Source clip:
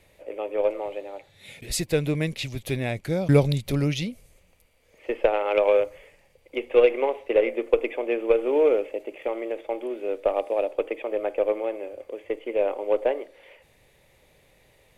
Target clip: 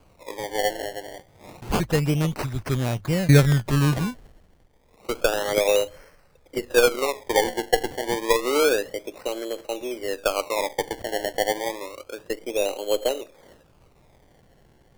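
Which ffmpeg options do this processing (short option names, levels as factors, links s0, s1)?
-af "bass=f=250:g=7,treble=f=4000:g=8,acrusher=samples=24:mix=1:aa=0.000001:lfo=1:lforange=24:lforate=0.29,bandreject=f=50:t=h:w=6,bandreject=f=100:t=h:w=6,volume=0.891"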